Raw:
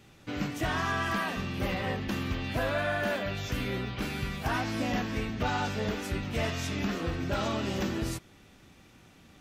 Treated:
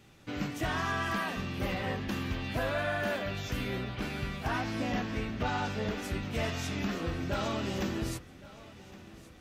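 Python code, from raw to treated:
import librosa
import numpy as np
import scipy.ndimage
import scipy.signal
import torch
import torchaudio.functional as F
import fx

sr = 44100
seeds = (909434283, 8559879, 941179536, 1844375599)

y = fx.high_shelf(x, sr, hz=7600.0, db=-7.0, at=(3.84, 5.98))
y = fx.echo_feedback(y, sr, ms=1115, feedback_pct=54, wet_db=-19)
y = y * 10.0 ** (-2.0 / 20.0)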